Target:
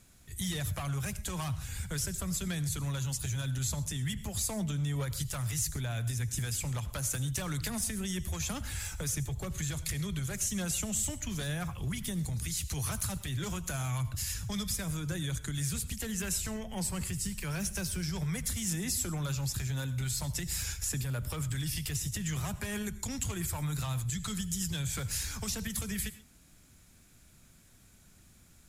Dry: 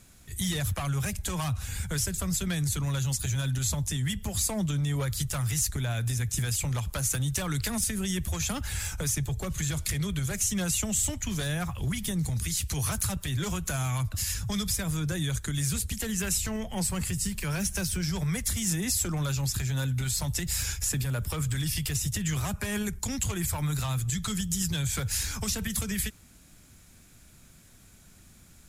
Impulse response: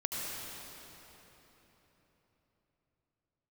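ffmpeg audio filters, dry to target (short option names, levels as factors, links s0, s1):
-filter_complex "[0:a]asplit=2[s0][s1];[1:a]atrim=start_sample=2205,atrim=end_sample=6174[s2];[s1][s2]afir=irnorm=-1:irlink=0,volume=0.299[s3];[s0][s3]amix=inputs=2:normalize=0,volume=0.447"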